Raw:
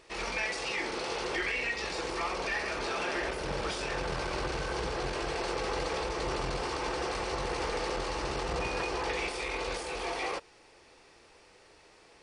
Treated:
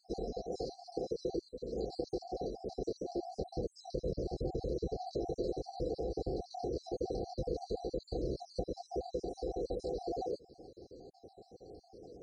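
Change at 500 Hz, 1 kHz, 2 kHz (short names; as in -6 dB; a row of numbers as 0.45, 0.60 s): -2.0 dB, -11.0 dB, under -40 dB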